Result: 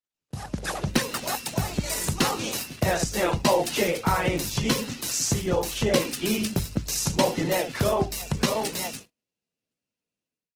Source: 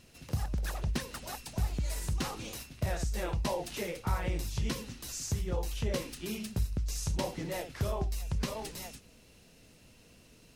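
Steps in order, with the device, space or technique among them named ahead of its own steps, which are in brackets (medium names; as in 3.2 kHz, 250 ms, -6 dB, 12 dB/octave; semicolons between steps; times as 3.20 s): video call (high-pass 150 Hz 12 dB/octave; level rider gain up to 14 dB; gate -40 dBFS, range -42 dB; trim -1 dB; Opus 16 kbps 48 kHz)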